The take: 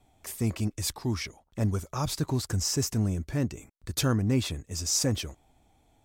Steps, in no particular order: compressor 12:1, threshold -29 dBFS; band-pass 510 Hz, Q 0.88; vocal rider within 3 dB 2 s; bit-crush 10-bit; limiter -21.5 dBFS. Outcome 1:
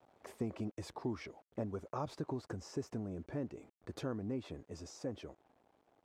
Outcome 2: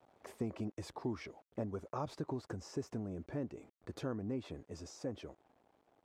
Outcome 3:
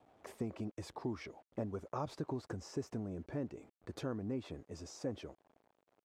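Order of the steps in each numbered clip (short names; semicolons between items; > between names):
compressor > bit-crush > vocal rider > band-pass > limiter; bit-crush > compressor > limiter > vocal rider > band-pass; vocal rider > compressor > bit-crush > band-pass > limiter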